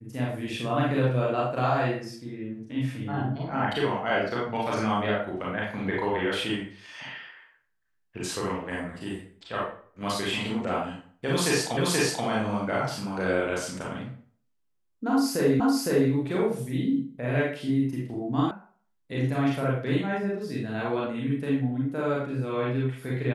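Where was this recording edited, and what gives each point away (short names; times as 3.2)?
11.77 repeat of the last 0.48 s
15.6 repeat of the last 0.51 s
18.51 sound cut off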